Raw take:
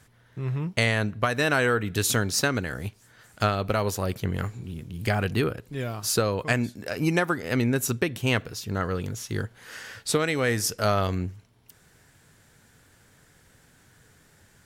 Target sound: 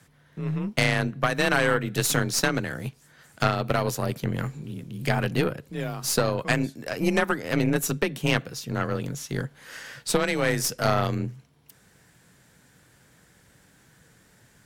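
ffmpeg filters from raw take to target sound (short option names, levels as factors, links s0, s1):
-af "afreqshift=28,aeval=exprs='0.473*(cos(1*acos(clip(val(0)/0.473,-1,1)))-cos(1*PI/2))+0.075*(cos(4*acos(clip(val(0)/0.473,-1,1)))-cos(4*PI/2))':c=same" -ar 44100 -c:a libvorbis -b:a 192k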